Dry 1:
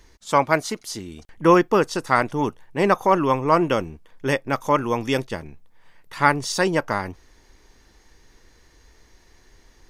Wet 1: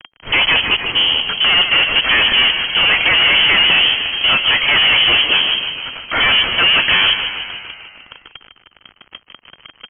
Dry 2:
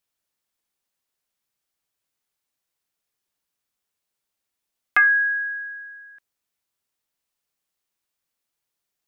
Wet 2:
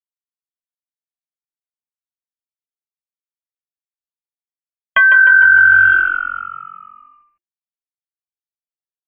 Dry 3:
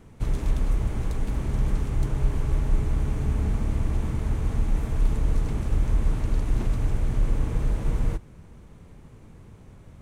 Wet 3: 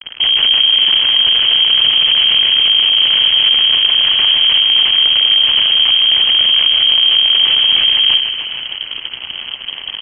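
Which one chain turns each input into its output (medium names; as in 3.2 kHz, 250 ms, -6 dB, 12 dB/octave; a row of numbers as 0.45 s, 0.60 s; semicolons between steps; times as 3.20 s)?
companded quantiser 6-bit; fuzz box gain 42 dB, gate -45 dBFS; frequency inversion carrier 3.2 kHz; on a send: frequency-shifting echo 152 ms, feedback 62%, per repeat -45 Hz, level -8.5 dB; on the sum: peak normalisation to -1.5 dBFS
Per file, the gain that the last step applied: +1.5 dB, +5.5 dB, +1.0 dB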